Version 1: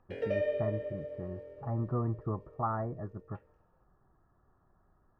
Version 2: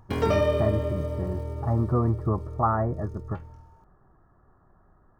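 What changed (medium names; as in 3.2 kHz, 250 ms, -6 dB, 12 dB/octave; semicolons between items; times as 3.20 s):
speech +9.0 dB; background: remove vowel filter e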